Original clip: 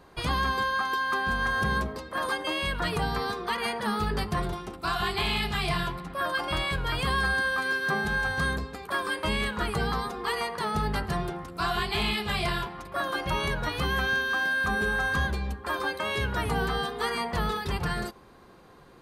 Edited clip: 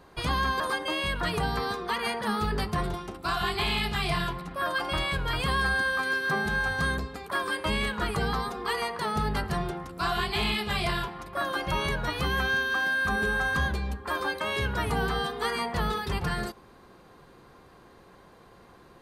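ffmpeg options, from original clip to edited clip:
-filter_complex "[0:a]asplit=2[a][b];[a]atrim=end=0.602[c];[b]atrim=start=2.188[d];[c][d]acrossfade=d=0.004:c1=hsin:c2=hsin"

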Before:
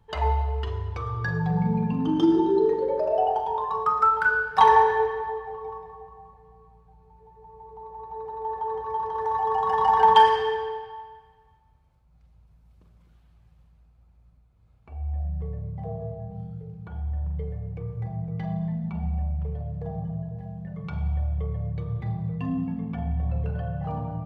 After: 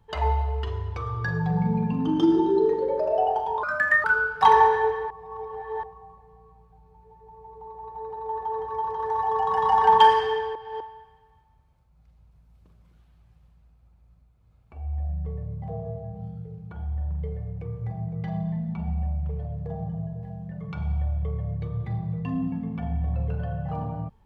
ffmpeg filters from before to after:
-filter_complex "[0:a]asplit=7[a][b][c][d][e][f][g];[a]atrim=end=3.634[h];[b]atrim=start=3.63:end=4.2,asetpts=PTS-STARTPTS,asetrate=60858,aresample=44100,atrim=end_sample=18215,asetpts=PTS-STARTPTS[i];[c]atrim=start=4.196:end=5.262[j];[d]atrim=start=5.258:end=5.992,asetpts=PTS-STARTPTS,areverse[k];[e]atrim=start=5.988:end=10.712[l];[f]atrim=start=10.708:end=10.962,asetpts=PTS-STARTPTS,areverse[m];[g]atrim=start=10.958[n];[h][i]acrossfade=d=0.004:c1=hsin:c2=hsin[o];[o][j]acrossfade=d=0.004:c1=hsin:c2=hsin[p];[p][k]acrossfade=d=0.004:c1=hsin:c2=hsin[q];[q][l]acrossfade=d=0.004:c1=hsin:c2=hsin[r];[r][m]acrossfade=d=0.004:c1=hsin:c2=hsin[s];[s][n]acrossfade=d=0.004:c1=hsin:c2=hsin"

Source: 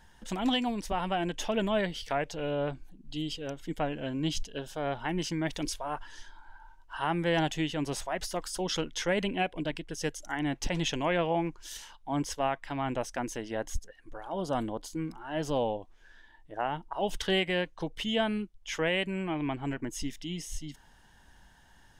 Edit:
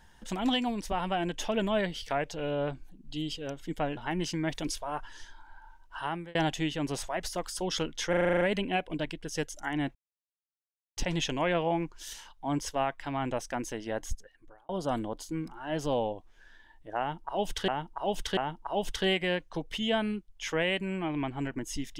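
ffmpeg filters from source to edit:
-filter_complex "[0:a]asplit=15[a][b][c][d][e][f][g][h][i][j][k][l][m][n][o];[a]atrim=end=3.972[p];[b]atrim=start=4.948:end=7.33,asetpts=PTS-STARTPTS,afade=t=out:st=1.992:d=0.39[q];[c]atrim=start=7.33:end=9.112,asetpts=PTS-STARTPTS,afade=t=in:d=0.004:c=hsin[r];[d]atrim=start=9.068:end=9.112[s];[e]atrim=start=9.068:end=9.112[t];[f]atrim=start=9.068:end=9.112[u];[g]atrim=start=9.068:end=9.112[v];[h]atrim=start=9.068:end=9.112[w];[i]atrim=start=9.068:end=9.112[x];[j]atrim=start=9.068:end=9.112[y];[k]atrim=start=9.068:end=10.61,asetpts=PTS-STARTPTS,afade=t=out:st=1.538:d=0.004:c=hsin,apad=pad_dur=1.02[z];[l]atrim=start=10.61:end=14.33,asetpts=PTS-STARTPTS,afade=t=in:d=0.004:c=hsin,afade=t=out:st=3.08:d=0.64[aa];[m]atrim=start=14.33:end=17.322,asetpts=PTS-STARTPTS,afade=t=in:d=0.004:c=hsin[ab];[n]atrim=start=16.628:end=17.322[ac];[o]atrim=start=16.628[ad];[q][r]concat=n=2:v=0:a=1[ae];[p][ae]acrossfade=d=0.004:c1=hsin:c2=hsin[af];[af][s]acrossfade=d=0.004:c1=hsin:c2=hsin[ag];[ag][t]acrossfade=d=0.004:c1=hsin:c2=hsin[ah];[ah][u]acrossfade=d=0.004:c1=hsin:c2=hsin[ai];[ai][v]acrossfade=d=0.004:c1=hsin:c2=hsin[aj];[aj][w]acrossfade=d=0.004:c1=hsin:c2=hsin[ak];[ak][x]acrossfade=d=0.004:c1=hsin:c2=hsin[al];[al][y]acrossfade=d=0.004:c1=hsin:c2=hsin[am];[z][aa][ab]concat=n=3:v=0:a=1[an];[am][an]acrossfade=d=0.004:c1=hsin:c2=hsin[ao];[ao][ac]acrossfade=d=0.004:c1=hsin:c2=hsin[ap];[ap][ad]acrossfade=d=0.004:c1=hsin:c2=hsin"

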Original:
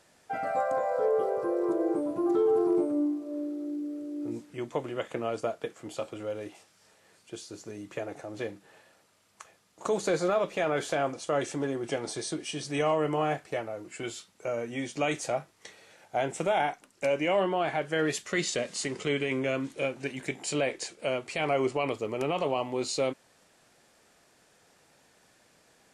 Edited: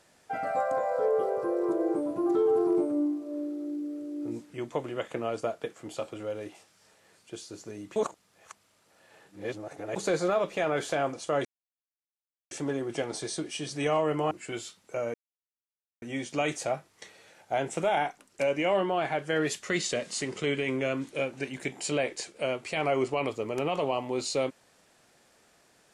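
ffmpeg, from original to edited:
-filter_complex "[0:a]asplit=6[a][b][c][d][e][f];[a]atrim=end=7.962[g];[b]atrim=start=7.958:end=9.962,asetpts=PTS-STARTPTS,areverse[h];[c]atrim=start=9.958:end=11.45,asetpts=PTS-STARTPTS,afade=t=out:st=1.488:d=0.004:c=hsin,apad=pad_dur=1.06[i];[d]atrim=start=11.45:end=13.252,asetpts=PTS-STARTPTS,afade=t=in:d=0.004:c=hsin[j];[e]atrim=start=13.818:end=14.65,asetpts=PTS-STARTPTS,afade=t=out:st=0.828:d=0.004:c=hsin,apad=pad_dur=0.88[k];[f]atrim=start=14.65,asetpts=PTS-STARTPTS,afade=t=in:d=0.004:c=hsin[l];[g][h]acrossfade=d=0.004:c1=hsin:c2=hsin[m];[i][j]concat=n=2:v=0:a=1[n];[m][n]acrossfade=d=0.004:c1=hsin:c2=hsin[o];[k][l]concat=n=2:v=0:a=1[p];[o][p]acrossfade=d=0.004:c1=hsin:c2=hsin"

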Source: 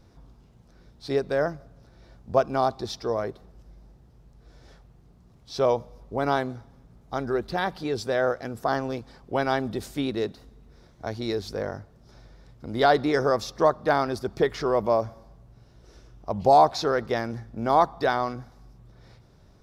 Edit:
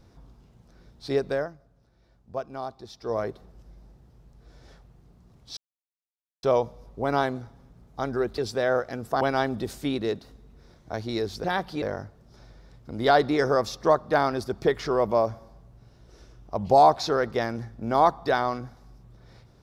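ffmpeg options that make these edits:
-filter_complex "[0:a]asplit=8[a][b][c][d][e][f][g][h];[a]atrim=end=1.48,asetpts=PTS-STARTPTS,afade=t=out:st=1.31:d=0.17:silence=0.281838[i];[b]atrim=start=1.48:end=2.99,asetpts=PTS-STARTPTS,volume=-11dB[j];[c]atrim=start=2.99:end=5.57,asetpts=PTS-STARTPTS,afade=t=in:d=0.17:silence=0.281838,afade=t=out:st=2.576:d=0.004:c=hsin,apad=pad_dur=0.86[k];[d]atrim=start=5.57:end=7.522,asetpts=PTS-STARTPTS,afade=t=in:d=0.004:c=hsin[l];[e]atrim=start=7.898:end=8.732[m];[f]atrim=start=9.338:end=11.572[n];[g]atrim=start=7.518:end=7.902[o];[h]atrim=start=11.568[p];[i][j][k][l]concat=n=4:v=0:a=1[q];[q][m]acrossfade=d=0.004:c1=hsin:c2=hsin[r];[r][n]acrossfade=d=0.004:c1=hsin:c2=hsin[s];[s][o]acrossfade=d=0.004:c1=hsin:c2=hsin[t];[t][p]acrossfade=d=0.004:c1=hsin:c2=hsin"

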